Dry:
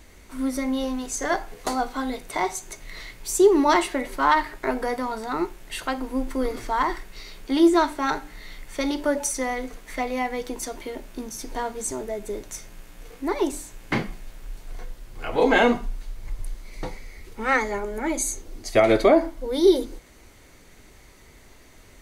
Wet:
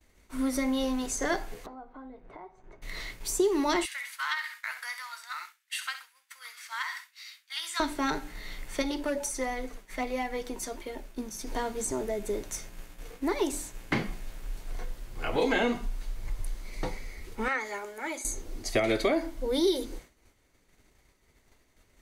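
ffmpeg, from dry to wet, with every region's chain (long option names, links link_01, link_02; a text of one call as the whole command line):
ffmpeg -i in.wav -filter_complex "[0:a]asettb=1/sr,asplit=3[link_01][link_02][link_03];[link_01]atrim=end=1.664[link_04];[link_02]atrim=start=1.66:end=2.82,asetpts=PTS-STARTPTS,afade=type=in:duration=0.004:curve=qsin,afade=type=out:start_time=1.156:duration=0.004:curve=qsin,lowpass=1200,acompressor=threshold=-40dB:ratio=8:attack=3.2:release=140:knee=1:detection=peak[link_05];[link_03]atrim=start=2.816[link_06];[link_04][link_05]acrossfade=duration=0.004:curve1=hsin:curve2=qsin[link_07];[link_07][link_06]acrossfade=duration=0.004:curve1=qsin:curve2=hsin,asettb=1/sr,asplit=3[link_08][link_09][link_10];[link_08]atrim=end=3.854[link_11];[link_09]atrim=start=3.85:end=7.8,asetpts=PTS-STARTPTS,afade=type=in:duration=0.004:curve=qsin,afade=type=out:start_time=3.946:duration=0.004:curve=qsin,highpass=frequency=1500:width=0.5412,highpass=frequency=1500:width=1.3066,aecho=1:1:65|130|195|260:0.282|0.104|0.0386|0.0143,atrim=end_sample=174195[link_12];[link_10]atrim=start=7.796[link_13];[link_11][link_12]acrossfade=duration=0.004:curve1=hsin:curve2=qsin[link_14];[link_14][link_13]acrossfade=duration=0.004:curve1=qsin:curve2=hsin,asettb=1/sr,asplit=3[link_15][link_16][link_17];[link_15]atrim=end=8.824[link_18];[link_16]atrim=start=8.82:end=11.47,asetpts=PTS-STARTPTS,afade=type=in:duration=0.004:curve=qsin,afade=type=out:start_time=2.646:duration=0.004:curve=qsin,flanger=delay=1.1:depth=4.3:regen=57:speed=1.4:shape=sinusoidal,asoftclip=type=hard:threshold=-22dB[link_19];[link_17]atrim=start=11.466[link_20];[link_18][link_19]acrossfade=duration=0.004:curve1=hsin:curve2=qsin[link_21];[link_21][link_20]acrossfade=duration=0.004:curve1=qsin:curve2=hsin,asettb=1/sr,asplit=3[link_22][link_23][link_24];[link_22]atrim=end=17.484[link_25];[link_23]atrim=start=17.48:end=18.25,asetpts=PTS-STARTPTS,afade=type=in:duration=0.004:curve=qsin,afade=type=out:start_time=0.766:duration=0.004:curve=qsin,acrossover=split=2600[link_26][link_27];[link_27]acompressor=threshold=-40dB:ratio=4:attack=1:release=60[link_28];[link_26][link_28]amix=inputs=2:normalize=0,highpass=frequency=1400:poles=1[link_29];[link_24]atrim=start=18.246[link_30];[link_25][link_29]acrossfade=duration=0.004:curve1=hsin:curve2=qsin[link_31];[link_31][link_30]acrossfade=duration=0.004:curve1=qsin:curve2=hsin,agate=range=-33dB:threshold=-39dB:ratio=3:detection=peak,acrossover=split=510|1700[link_32][link_33][link_34];[link_32]acompressor=threshold=-27dB:ratio=4[link_35];[link_33]acompressor=threshold=-35dB:ratio=4[link_36];[link_34]acompressor=threshold=-31dB:ratio=4[link_37];[link_35][link_36][link_37]amix=inputs=3:normalize=0" out.wav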